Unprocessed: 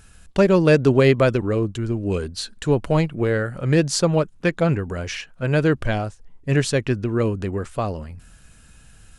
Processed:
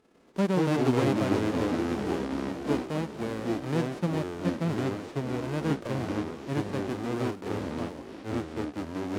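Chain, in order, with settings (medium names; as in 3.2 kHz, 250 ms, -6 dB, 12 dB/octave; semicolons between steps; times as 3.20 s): formants flattened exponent 0.1; ever faster or slower copies 85 ms, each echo -4 st, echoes 3; band-pass filter 280 Hz, Q 1.6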